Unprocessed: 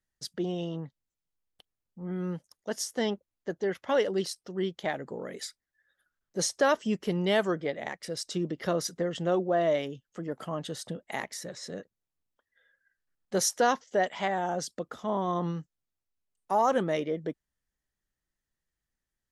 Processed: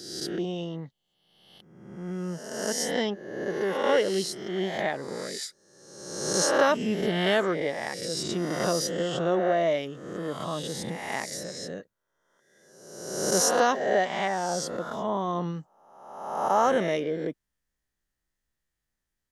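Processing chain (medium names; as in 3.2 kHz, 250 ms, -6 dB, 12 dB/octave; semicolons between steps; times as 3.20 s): reverse spectral sustain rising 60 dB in 1.13 s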